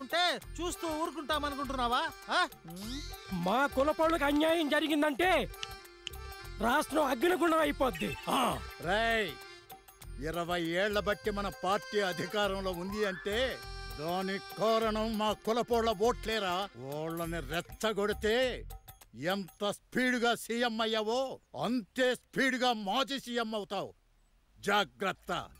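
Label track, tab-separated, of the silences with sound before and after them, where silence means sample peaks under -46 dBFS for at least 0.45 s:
23.910000	24.630000	silence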